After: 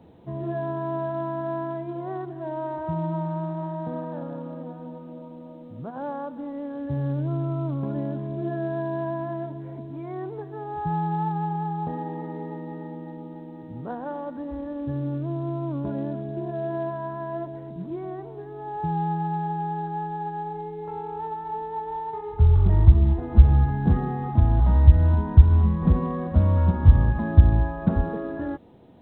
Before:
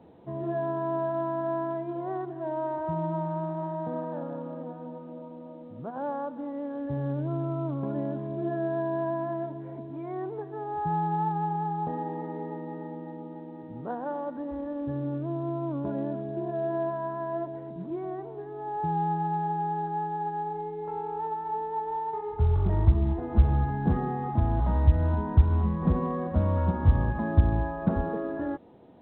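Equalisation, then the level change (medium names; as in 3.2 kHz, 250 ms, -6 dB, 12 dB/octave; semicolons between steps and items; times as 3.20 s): bass shelf 200 Hz +10.5 dB; treble shelf 2 kHz +9 dB; -2.0 dB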